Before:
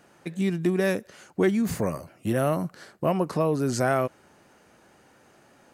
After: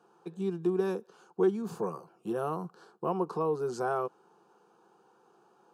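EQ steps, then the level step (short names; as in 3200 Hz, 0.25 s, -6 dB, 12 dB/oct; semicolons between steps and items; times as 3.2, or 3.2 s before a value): HPF 300 Hz 12 dB/oct; LPF 1300 Hz 6 dB/oct; fixed phaser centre 400 Hz, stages 8; 0.0 dB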